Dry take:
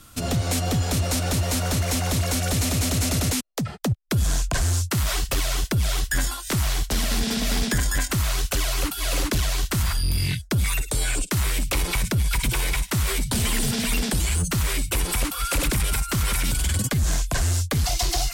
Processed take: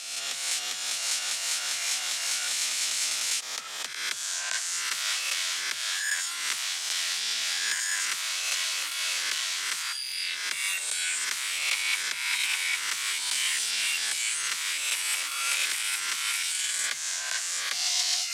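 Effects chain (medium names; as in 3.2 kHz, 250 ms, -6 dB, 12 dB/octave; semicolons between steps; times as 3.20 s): reverse spectral sustain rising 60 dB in 1.11 s; reverse; upward compressor, threshold -24 dBFS; reverse; companded quantiser 8-bit; Butterworth band-pass 4 kHz, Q 0.56; trim -2 dB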